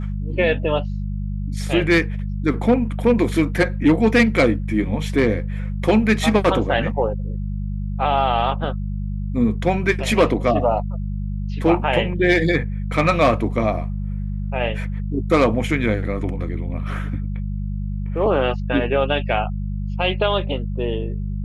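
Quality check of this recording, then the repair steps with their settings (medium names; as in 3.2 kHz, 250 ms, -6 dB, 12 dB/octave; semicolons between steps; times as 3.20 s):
hum 50 Hz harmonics 4 -25 dBFS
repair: de-hum 50 Hz, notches 4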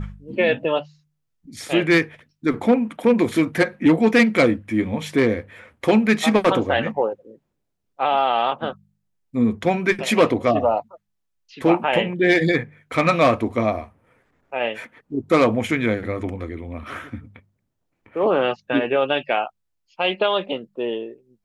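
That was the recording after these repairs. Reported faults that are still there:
nothing left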